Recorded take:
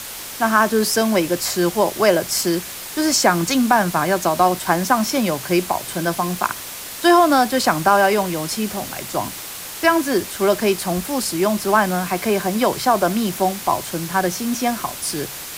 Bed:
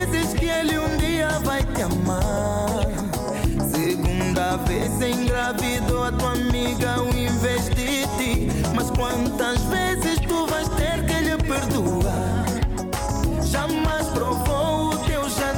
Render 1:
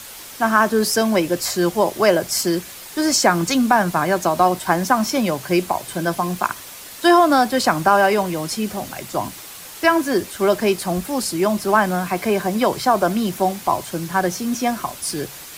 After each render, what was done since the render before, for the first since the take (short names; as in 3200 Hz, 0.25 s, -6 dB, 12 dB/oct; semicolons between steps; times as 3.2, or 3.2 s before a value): denoiser 6 dB, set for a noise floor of -33 dBFS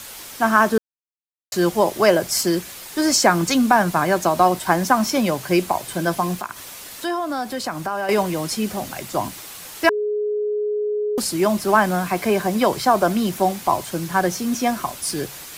0.78–1.52 mute; 6.35–8.09 compressor 2:1, threshold -30 dBFS; 9.89–11.18 bleep 419 Hz -19.5 dBFS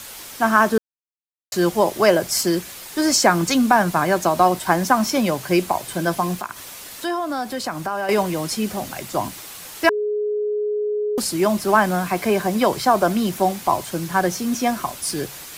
nothing audible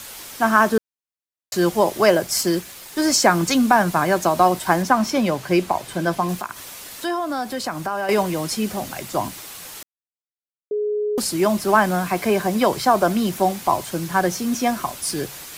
2.09–3.24 G.711 law mismatch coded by A; 4.82–6.29 high shelf 6600 Hz -8 dB; 9.83–10.71 mute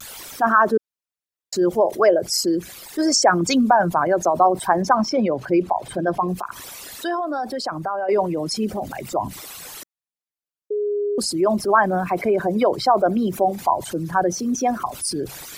formant sharpening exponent 2; vibrato 0.7 Hz 37 cents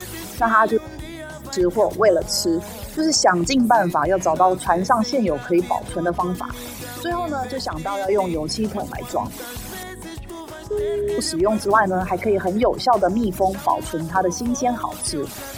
add bed -12.5 dB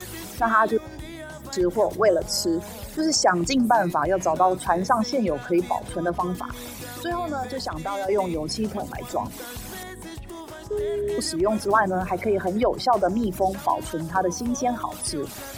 gain -3.5 dB